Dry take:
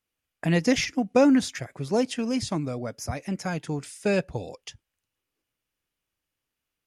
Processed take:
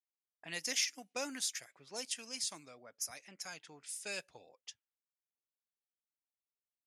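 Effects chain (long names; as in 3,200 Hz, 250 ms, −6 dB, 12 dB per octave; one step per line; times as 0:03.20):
first difference
low-pass that shuts in the quiet parts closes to 550 Hz, open at −39 dBFS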